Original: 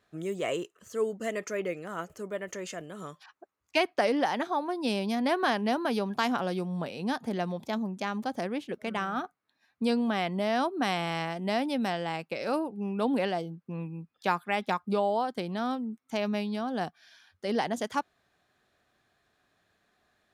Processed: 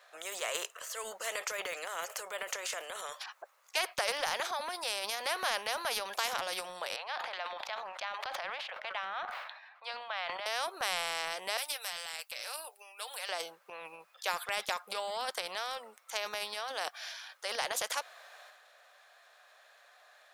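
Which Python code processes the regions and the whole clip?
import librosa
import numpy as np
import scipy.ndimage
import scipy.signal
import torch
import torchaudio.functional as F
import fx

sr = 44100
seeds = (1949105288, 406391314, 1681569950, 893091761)

y = fx.chain(x, sr, fx.steep_highpass(hz=670.0, slope=36),
    fx.air_absorb(metres=380.0),
    fx.sustainer(db_per_s=95.0), at=(6.96, 10.46))
y = fx.chain(y, sr, fx.differentiator(),
    fx.comb(ms=6.7, depth=0.41), at=(11.57, 13.29))
y = scipy.signal.sosfilt(scipy.signal.ellip(4, 1.0, 50, 540.0, 'highpass', fs=sr, output='sos'), y)
y = fx.transient(y, sr, attack_db=1, sustain_db=8)
y = fx.spectral_comp(y, sr, ratio=2.0)
y = y * librosa.db_to_amplitude(-2.0)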